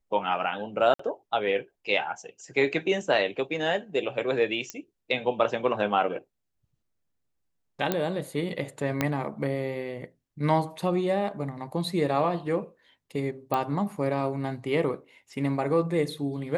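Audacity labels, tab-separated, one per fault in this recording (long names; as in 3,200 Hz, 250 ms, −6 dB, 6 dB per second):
0.940000	0.990000	drop-out 54 ms
4.700000	4.700000	click −17 dBFS
7.920000	7.920000	click −11 dBFS
9.010000	9.010000	click −10 dBFS
13.540000	13.540000	click −14 dBFS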